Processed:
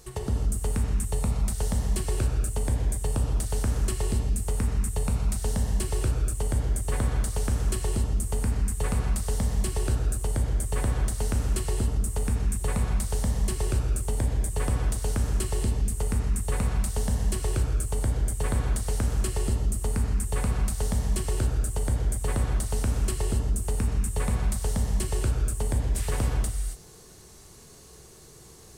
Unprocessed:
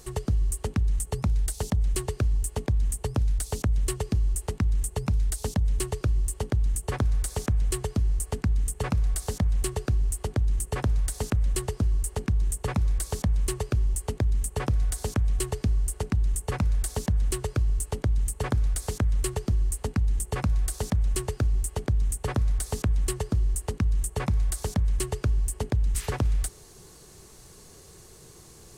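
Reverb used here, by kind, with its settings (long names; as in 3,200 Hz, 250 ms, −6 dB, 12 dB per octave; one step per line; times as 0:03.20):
reverb whose tail is shaped and stops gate 300 ms flat, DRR −0.5 dB
level −3 dB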